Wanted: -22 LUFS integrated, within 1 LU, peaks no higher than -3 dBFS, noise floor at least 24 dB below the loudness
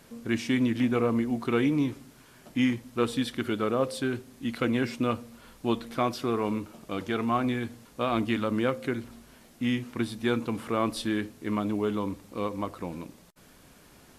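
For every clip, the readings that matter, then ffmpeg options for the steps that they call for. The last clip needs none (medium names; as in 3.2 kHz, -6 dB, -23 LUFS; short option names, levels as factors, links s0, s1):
loudness -29.5 LUFS; peak level -13.0 dBFS; loudness target -22.0 LUFS
-> -af "volume=2.37"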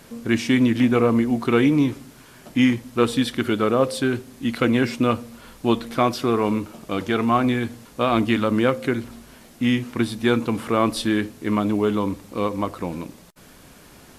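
loudness -22.0 LUFS; peak level -5.5 dBFS; noise floor -48 dBFS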